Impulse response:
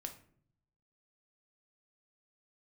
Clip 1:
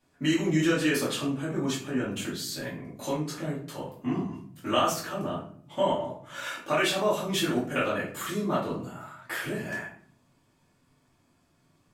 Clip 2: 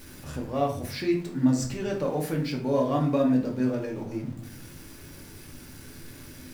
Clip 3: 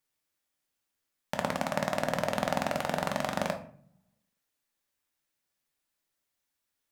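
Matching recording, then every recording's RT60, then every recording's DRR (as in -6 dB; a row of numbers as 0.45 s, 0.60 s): 3; 0.55 s, 0.55 s, 0.60 s; -8.5 dB, 0.0 dB, 4.0 dB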